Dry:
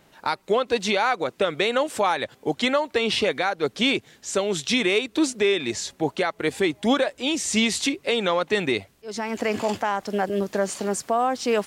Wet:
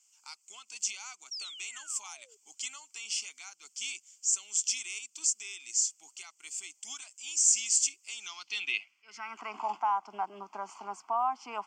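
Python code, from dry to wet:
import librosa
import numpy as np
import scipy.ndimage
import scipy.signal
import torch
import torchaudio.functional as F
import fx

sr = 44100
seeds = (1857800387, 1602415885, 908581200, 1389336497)

y = scipy.signal.sosfilt(scipy.signal.butter(4, 190.0, 'highpass', fs=sr, output='sos'), x)
y = fx.high_shelf(y, sr, hz=2500.0, db=10.0)
y = fx.fixed_phaser(y, sr, hz=2600.0, stages=8)
y = fx.spec_paint(y, sr, seeds[0], shape='fall', start_s=1.31, length_s=1.06, low_hz=400.0, high_hz=5800.0, level_db=-29.0)
y = fx.filter_sweep_bandpass(y, sr, from_hz=7500.0, to_hz=920.0, start_s=8.08, end_s=9.58, q=3.2)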